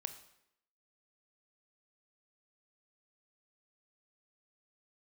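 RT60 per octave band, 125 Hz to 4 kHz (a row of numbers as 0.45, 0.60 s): 0.70, 0.85, 0.80, 0.75, 0.75, 0.70 s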